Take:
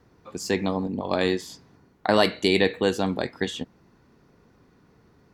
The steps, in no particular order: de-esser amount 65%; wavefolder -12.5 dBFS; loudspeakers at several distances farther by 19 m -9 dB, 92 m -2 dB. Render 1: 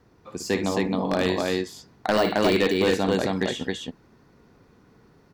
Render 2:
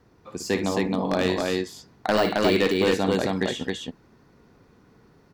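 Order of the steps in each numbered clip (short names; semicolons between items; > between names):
de-esser > loudspeakers at several distances > wavefolder; de-esser > wavefolder > loudspeakers at several distances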